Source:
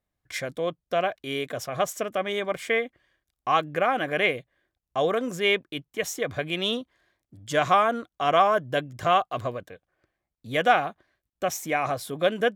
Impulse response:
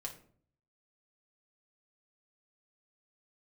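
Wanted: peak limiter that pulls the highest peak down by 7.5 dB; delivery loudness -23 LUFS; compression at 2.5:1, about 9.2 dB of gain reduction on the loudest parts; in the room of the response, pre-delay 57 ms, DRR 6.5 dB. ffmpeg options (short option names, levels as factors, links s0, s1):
-filter_complex "[0:a]acompressor=threshold=0.0355:ratio=2.5,alimiter=limit=0.0668:level=0:latency=1,asplit=2[s0][s1];[1:a]atrim=start_sample=2205,adelay=57[s2];[s1][s2]afir=irnorm=-1:irlink=0,volume=0.596[s3];[s0][s3]amix=inputs=2:normalize=0,volume=3.55"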